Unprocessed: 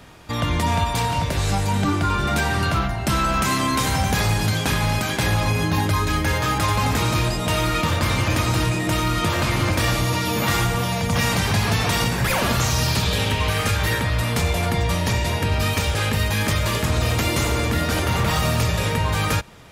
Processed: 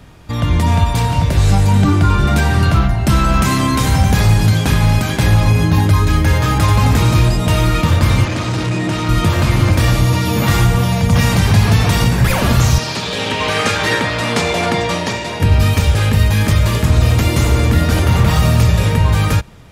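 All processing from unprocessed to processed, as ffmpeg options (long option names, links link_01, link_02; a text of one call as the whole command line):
ffmpeg -i in.wav -filter_complex "[0:a]asettb=1/sr,asplit=3[link_01][link_02][link_03];[link_01]atrim=end=8.254[link_04];[link_02]atrim=start=8.25:end=9.09,asetpts=PTS-STARTPTS,afade=type=in:duration=0.004:curve=qsin,afade=type=out:start_time=0.836:duration=0.004:curve=qsin,volume=20dB,asoftclip=hard,volume=-20dB,highpass=140,lowpass=7100[link_05];[link_03]atrim=start=9.086[link_06];[link_04][link_05]acrossfade=duration=0.004:curve1=hsin:curve2=qsin[link_07];[link_07][link_06]acrossfade=duration=0.004:curve1=qsin:curve2=hsin,asettb=1/sr,asplit=3[link_08][link_09][link_10];[link_08]atrim=end=12.784[link_11];[link_09]atrim=start=12.78:end=15.4,asetpts=PTS-STARTPTS,afade=type=in:duration=0.004:curve=qsin,afade=type=out:start_time=2.616:duration=0.004:curve=qsin,aeval=exprs='sgn(val(0))*max(abs(val(0))-0.0119,0)':channel_layout=same,highpass=290,lowpass=7300[link_12];[link_10]atrim=start=15.396[link_13];[link_11][link_12]acrossfade=duration=0.004:curve1=hsin:curve2=qsin[link_14];[link_14][link_13]acrossfade=duration=0.004:curve1=qsin:curve2=hsin,lowshelf=frequency=240:gain=10,dynaudnorm=framelen=110:gausssize=9:maxgain=11.5dB,volume=-1dB" out.wav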